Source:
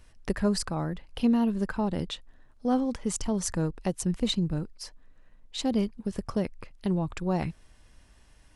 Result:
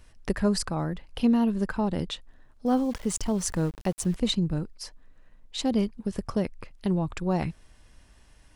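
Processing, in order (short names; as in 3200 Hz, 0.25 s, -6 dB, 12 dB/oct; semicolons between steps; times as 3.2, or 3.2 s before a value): 2.66–4.16 sample gate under -43 dBFS; gain +1.5 dB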